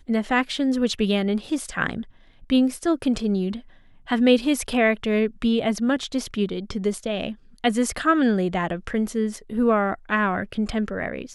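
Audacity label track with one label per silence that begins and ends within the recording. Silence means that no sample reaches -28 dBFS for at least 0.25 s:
2.020000	2.500000	silence
3.570000	4.090000	silence
7.320000	7.640000	silence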